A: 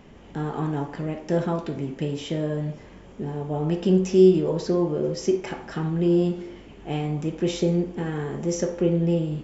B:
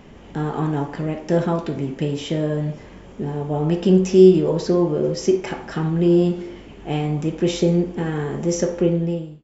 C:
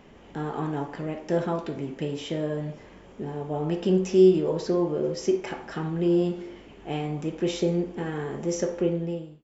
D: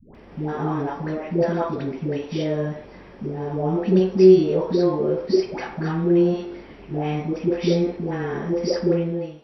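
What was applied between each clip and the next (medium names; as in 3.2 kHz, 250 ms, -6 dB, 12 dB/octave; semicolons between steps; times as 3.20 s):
fade out at the end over 0.65 s; trim +4.5 dB
tone controls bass -5 dB, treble -2 dB; trim -5 dB
knee-point frequency compression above 3.4 kHz 1.5:1; peaking EQ 3 kHz -7.5 dB 0.22 oct; phase dispersion highs, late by 149 ms, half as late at 540 Hz; trim +5 dB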